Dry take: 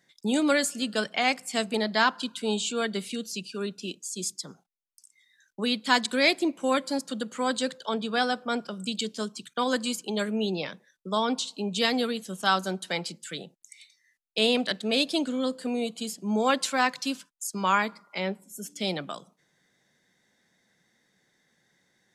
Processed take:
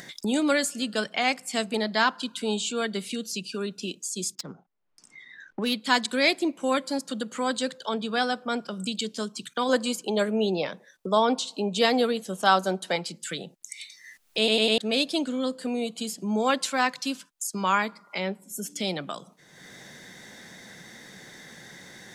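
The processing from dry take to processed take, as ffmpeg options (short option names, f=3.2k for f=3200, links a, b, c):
-filter_complex "[0:a]asettb=1/sr,asplit=3[a][b][c];[a]atrim=end=4.354[d];[b]atrim=start=4.35:end=5.74,asetpts=PTS-STARTPTS,afade=t=in:d=0.004:c=qsin,afade=t=out:st=1.386:d=0.004:c=qsin,adynamicsmooth=sensitivity=7.5:basefreq=1.6k[e];[c]atrim=start=5.736[f];[d][e]acrossfade=d=0.004:c1=hsin:c2=qsin[g];[g][f]acrossfade=d=0.004:c1=qsin:c2=hsin,asettb=1/sr,asplit=3[h][i][j];[h]atrim=end=9.694[k];[i]atrim=start=9.69:end=12.96,asetpts=PTS-STARTPTS,afade=t=in:d=0.004:c=qsin,afade=t=out:st=3.266:d=0.004:c=qsin,equalizer=f=620:w=0.81:g=7[l];[j]atrim=start=12.956[m];[k][l]acrossfade=d=0.004:c1=hsin:c2=qsin[n];[n][m]acrossfade=d=0.004:c1=qsin:c2=hsin,asplit=5[o][p][q][r][s];[o]atrim=end=14.482[t];[p]atrim=start=14.378:end=14.482[u];[q]atrim=start=14.378:end=14.482[v];[r]atrim=start=14.378:end=14.482[w];[s]atrim=start=14.778[x];[t][u]acrossfade=d=0.004:c1=hsin:c2=hsin[y];[y][v]acrossfade=d=0.004:c1=hsin:c2=hsin[z];[z][w]acrossfade=d=0.004:c1=hsin:c2=hsin[aa];[aa][x]acrossfade=d=0.004:c1=hsin:c2=hsin,acompressor=mode=upward:threshold=-27dB:ratio=2.5"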